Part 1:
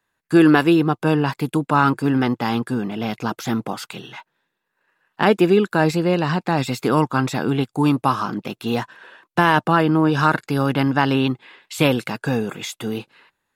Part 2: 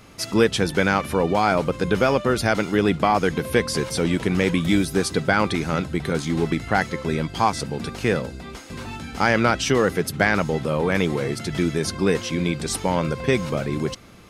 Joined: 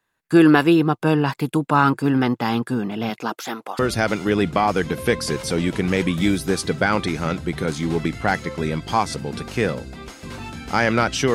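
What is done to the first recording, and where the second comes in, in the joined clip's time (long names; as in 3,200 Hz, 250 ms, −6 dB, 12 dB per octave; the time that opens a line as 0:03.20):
part 1
0:03.09–0:03.79: high-pass filter 170 Hz → 820 Hz
0:03.79: continue with part 2 from 0:02.26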